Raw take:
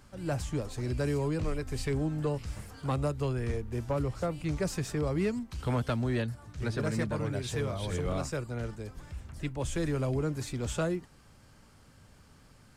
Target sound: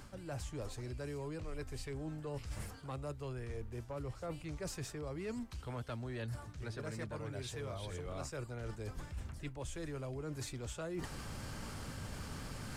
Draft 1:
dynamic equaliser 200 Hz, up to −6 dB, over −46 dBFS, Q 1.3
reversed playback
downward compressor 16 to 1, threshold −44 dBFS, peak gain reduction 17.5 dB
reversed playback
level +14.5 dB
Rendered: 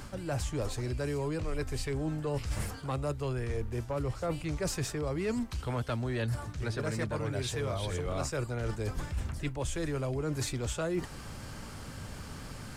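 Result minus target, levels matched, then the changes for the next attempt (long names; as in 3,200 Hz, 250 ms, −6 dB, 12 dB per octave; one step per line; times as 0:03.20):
downward compressor: peak gain reduction −9.5 dB
change: downward compressor 16 to 1, threshold −54 dBFS, peak gain reduction 27 dB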